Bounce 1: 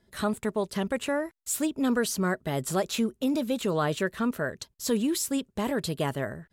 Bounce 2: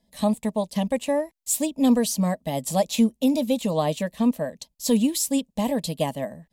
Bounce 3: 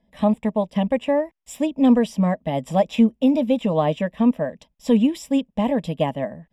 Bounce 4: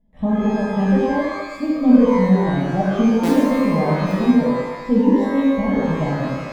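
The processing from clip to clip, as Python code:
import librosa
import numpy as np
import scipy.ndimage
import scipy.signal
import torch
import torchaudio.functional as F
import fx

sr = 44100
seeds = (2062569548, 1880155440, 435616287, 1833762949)

y1 = fx.fixed_phaser(x, sr, hz=380.0, stages=6)
y1 = fx.upward_expand(y1, sr, threshold_db=-39.0, expansion=1.5)
y1 = F.gain(torch.from_numpy(y1), 9.0).numpy()
y2 = scipy.signal.savgol_filter(y1, 25, 4, mode='constant')
y2 = F.gain(torch.from_numpy(y2), 3.5).numpy()
y3 = fx.tilt_eq(y2, sr, slope=-4.0)
y3 = fx.buffer_glitch(y3, sr, at_s=(3.23, 4.06), block=256, repeats=8)
y3 = fx.rev_shimmer(y3, sr, seeds[0], rt60_s=1.1, semitones=12, shimmer_db=-8, drr_db=-6.5)
y3 = F.gain(torch.from_numpy(y3), -11.5).numpy()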